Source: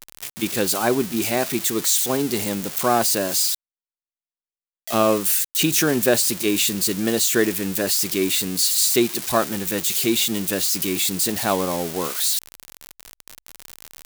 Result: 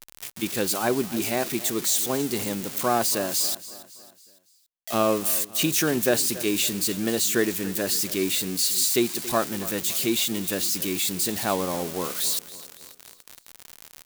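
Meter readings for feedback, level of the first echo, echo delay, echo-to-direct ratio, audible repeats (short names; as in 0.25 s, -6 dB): 47%, -17.0 dB, 0.279 s, -16.0 dB, 3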